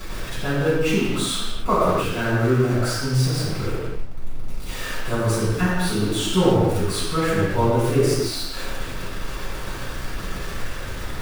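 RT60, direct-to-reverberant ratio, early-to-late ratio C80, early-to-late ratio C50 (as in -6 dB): not exponential, -10.5 dB, 0.0 dB, -2.5 dB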